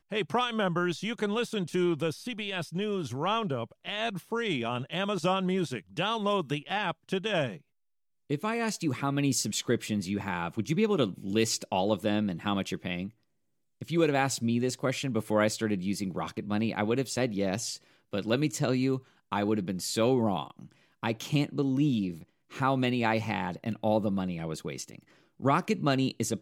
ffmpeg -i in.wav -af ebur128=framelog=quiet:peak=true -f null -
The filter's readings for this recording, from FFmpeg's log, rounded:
Integrated loudness:
  I:         -30.0 LUFS
  Threshold: -40.2 LUFS
Loudness range:
  LRA:         2.1 LU
  Threshold: -50.4 LUFS
  LRA low:   -31.4 LUFS
  LRA high:  -29.4 LUFS
True peak:
  Peak:      -12.1 dBFS